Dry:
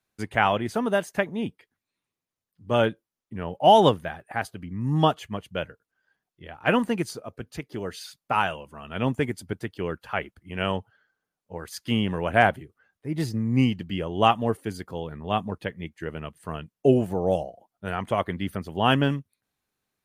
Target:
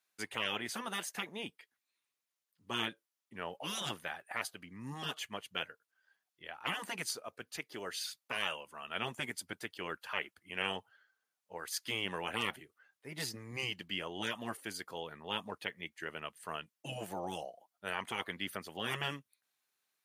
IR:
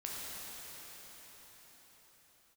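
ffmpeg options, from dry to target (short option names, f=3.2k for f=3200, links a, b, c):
-af "highpass=f=1.5k:p=1,afftfilt=real='re*lt(hypot(re,im),0.0794)':imag='im*lt(hypot(re,im),0.0794)':win_size=1024:overlap=0.75,volume=1dB"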